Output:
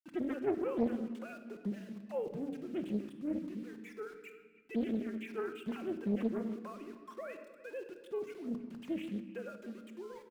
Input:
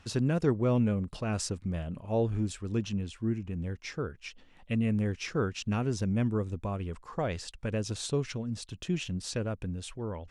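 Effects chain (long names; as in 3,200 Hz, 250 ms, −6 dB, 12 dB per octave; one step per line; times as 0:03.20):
three sine waves on the formant tracks
low-pass filter 2,800 Hz 6 dB per octave
parametric band 710 Hz −6 dB 0.83 octaves
centre clipping without the shift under −48.5 dBFS
far-end echo of a speakerphone 310 ms, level −17 dB
rectangular room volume 1,300 cubic metres, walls mixed, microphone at 0.89 metres
highs frequency-modulated by the lows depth 0.85 ms
level −7.5 dB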